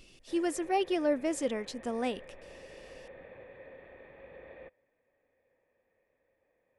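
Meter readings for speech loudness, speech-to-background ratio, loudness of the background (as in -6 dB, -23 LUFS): -32.0 LUFS, 19.5 dB, -51.5 LUFS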